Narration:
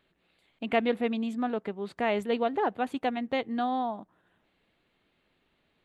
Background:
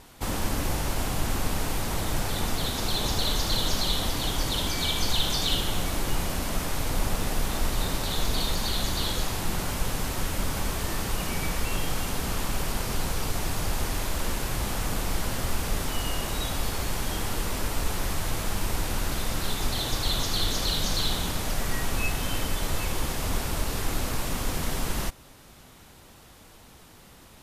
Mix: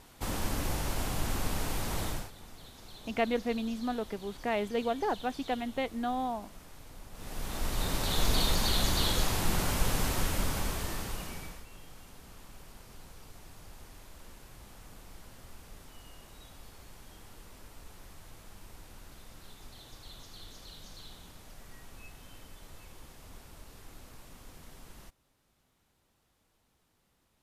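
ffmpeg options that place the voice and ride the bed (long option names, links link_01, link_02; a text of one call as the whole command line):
ffmpeg -i stem1.wav -i stem2.wav -filter_complex "[0:a]adelay=2450,volume=-3.5dB[link_01];[1:a]volume=17dB,afade=type=out:start_time=2.05:duration=0.26:silence=0.133352,afade=type=in:start_time=7.12:duration=1.17:silence=0.0794328,afade=type=out:start_time=10.07:duration=1.58:silence=0.0794328[link_02];[link_01][link_02]amix=inputs=2:normalize=0" out.wav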